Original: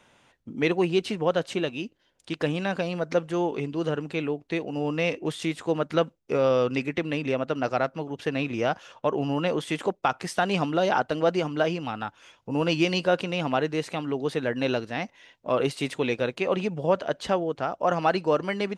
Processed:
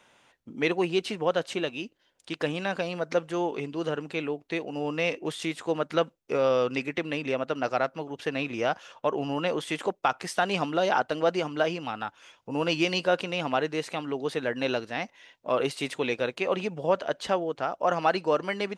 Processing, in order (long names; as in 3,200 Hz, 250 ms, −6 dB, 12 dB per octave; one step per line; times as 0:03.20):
low-shelf EQ 250 Hz −8.5 dB